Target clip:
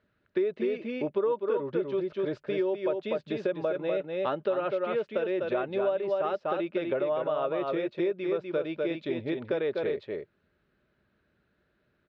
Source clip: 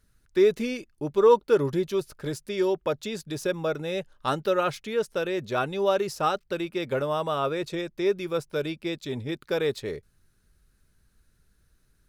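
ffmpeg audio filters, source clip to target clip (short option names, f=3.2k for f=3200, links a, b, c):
-filter_complex "[0:a]highpass=140,equalizer=f=140:t=q:w=4:g=-4,equalizer=f=360:t=q:w=4:g=4,equalizer=f=600:t=q:w=4:g=9,lowpass=f=3.2k:w=0.5412,lowpass=f=3.2k:w=1.3066,asplit=2[a][b];[b]aecho=0:1:248:0.562[c];[a][c]amix=inputs=2:normalize=0,acompressor=threshold=-26dB:ratio=5"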